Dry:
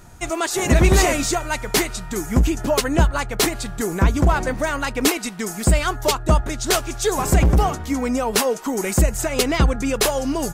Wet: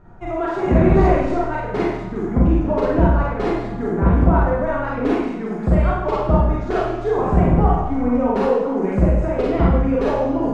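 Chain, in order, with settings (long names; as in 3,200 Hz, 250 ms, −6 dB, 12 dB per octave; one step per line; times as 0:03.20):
low-pass filter 1,100 Hz 12 dB per octave
four-comb reverb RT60 0.86 s, combs from 33 ms, DRR −5.5 dB
level −3 dB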